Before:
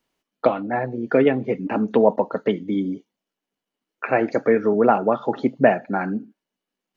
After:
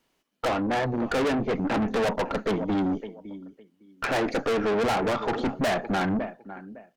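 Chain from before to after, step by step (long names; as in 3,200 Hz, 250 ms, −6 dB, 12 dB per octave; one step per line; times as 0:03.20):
repeating echo 558 ms, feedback 18%, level −21.5 dB
tube saturation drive 29 dB, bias 0.5
level +6.5 dB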